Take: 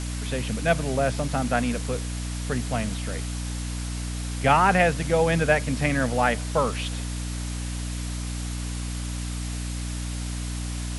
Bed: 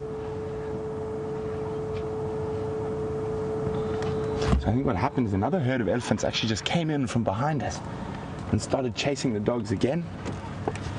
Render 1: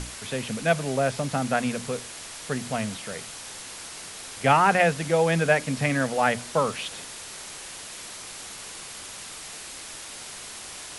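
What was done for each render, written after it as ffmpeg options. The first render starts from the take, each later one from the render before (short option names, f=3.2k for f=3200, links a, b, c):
-af "bandreject=f=60:t=h:w=6,bandreject=f=120:t=h:w=6,bandreject=f=180:t=h:w=6,bandreject=f=240:t=h:w=6,bandreject=f=300:t=h:w=6"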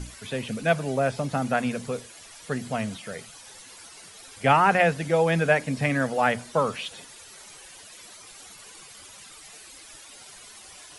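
-af "afftdn=nr=12:nf=-40"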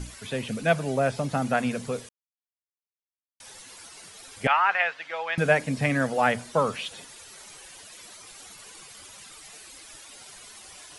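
-filter_complex "[0:a]asettb=1/sr,asplit=3[a][b][c];[a]atrim=end=4.474[d];[b]atrim=start=4.47:end=5.38,asetpts=PTS-STARTPTS,afade=t=in:d=0.004:c=qsin,afade=t=out:st=0.906:d=0.004:c=qsin,asuperpass=centerf=1900:order=4:qfactor=0.69[e];[c]atrim=start=5.376[f];[d][e]acrossfade=d=0.004:c1=hsin:c2=qsin[g];[g][f]acrossfade=d=0.004:c1=qsin:c2=hsin,asplit=3[h][i][j];[h]atrim=end=2.09,asetpts=PTS-STARTPTS,afade=t=out:st=2.086:d=0.004:c=hsin[k];[i]atrim=start=2.09:end=3.4,asetpts=PTS-STARTPTS,volume=0[l];[j]atrim=start=3.4,asetpts=PTS-STARTPTS,afade=t=in:d=0.004:c=hsin[m];[k][l][m]concat=n=3:v=0:a=1"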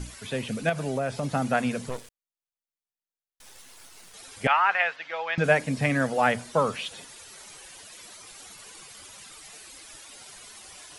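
-filter_complex "[0:a]asettb=1/sr,asplit=3[a][b][c];[a]atrim=end=0.694[d];[b]atrim=start=0.69:end=1.23,asetpts=PTS-STARTPTS,afade=t=in:d=0.004:c=qsin,afade=t=out:st=0.536:d=0.004:c=qsin,acompressor=threshold=-24dB:ratio=3:attack=3.2:release=140:knee=1:detection=peak[e];[c]atrim=start=1.226[f];[d][e]acrossfade=d=0.004:c1=hsin:c2=qsin[g];[g][f]acrossfade=d=0.004:c1=qsin:c2=hsin,asettb=1/sr,asplit=3[h][i][j];[h]atrim=end=1.894[k];[i]atrim=start=1.89:end=4.14,asetpts=PTS-STARTPTS,afade=t=in:d=0.004:c=qsin,afade=t=out:st=2.246:d=0.004:c=qsin,aeval=exprs='max(val(0),0)':c=same[l];[j]atrim=start=4.136[m];[k][l]acrossfade=d=0.004:c1=hsin:c2=qsin[n];[n][m]acrossfade=d=0.004:c1=qsin:c2=hsin,asettb=1/sr,asplit=3[o][p][q];[o]atrim=end=4.964[r];[p]atrim=start=4.96:end=5.44,asetpts=PTS-STARTPTS,afade=t=in:d=0.004:c=qsin,afade=t=out:st=0.476:d=0.004:c=qsin,lowpass=f=6.4k:w=0.5412,lowpass=f=6.4k:w=1.3066[s];[q]atrim=start=5.436[t];[r][s]acrossfade=d=0.004:c1=hsin:c2=qsin[u];[u][t]acrossfade=d=0.004:c1=qsin:c2=hsin"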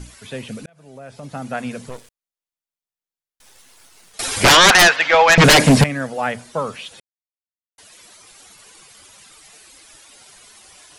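-filter_complex "[0:a]asettb=1/sr,asplit=3[a][b][c];[a]atrim=end=4.194[d];[b]atrim=start=4.19:end=5.84,asetpts=PTS-STARTPTS,afade=t=in:d=0.004:c=qsin,afade=t=out:st=1.646:d=0.004:c=qsin,aeval=exprs='0.501*sin(PI/2*7.94*val(0)/0.501)':c=same[e];[c]atrim=start=5.836[f];[d][e]acrossfade=d=0.004:c1=hsin:c2=qsin[g];[g][f]acrossfade=d=0.004:c1=qsin:c2=hsin,asplit=4[h][i][j][k];[h]atrim=end=0.66,asetpts=PTS-STARTPTS,afade=t=out:st=0.656:d=0.004:c=hsin[l];[i]atrim=start=0.66:end=7,asetpts=PTS-STARTPTS,afade=t=in:d=1.09,afade=t=out:st=6.336:d=0.004:c=hsin[m];[j]atrim=start=7:end=7.78,asetpts=PTS-STARTPTS,volume=0[n];[k]atrim=start=7.78,asetpts=PTS-STARTPTS,afade=t=in:d=0.004:c=hsin[o];[l][m][n][o]concat=n=4:v=0:a=1"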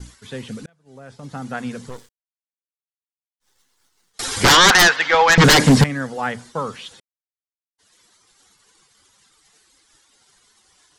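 -af "agate=range=-33dB:threshold=-38dB:ratio=3:detection=peak,equalizer=f=630:t=o:w=0.33:g=-9,equalizer=f=2.5k:t=o:w=0.33:g=-7,equalizer=f=10k:t=o:w=0.33:g=-7"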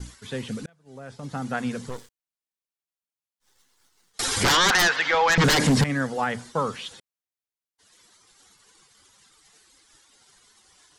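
-af "alimiter=limit=-13dB:level=0:latency=1:release=67"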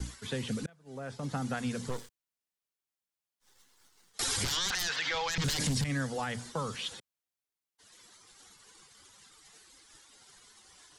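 -filter_complex "[0:a]acrossover=split=140|3000[a][b][c];[b]acompressor=threshold=-33dB:ratio=6[d];[a][d][c]amix=inputs=3:normalize=0,alimiter=limit=-22.5dB:level=0:latency=1:release=21"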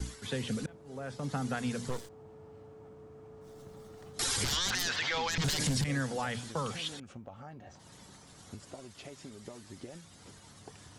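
-filter_complex "[1:a]volume=-22dB[a];[0:a][a]amix=inputs=2:normalize=0"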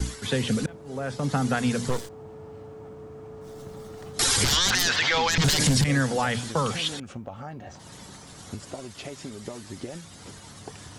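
-af "volume=9.5dB"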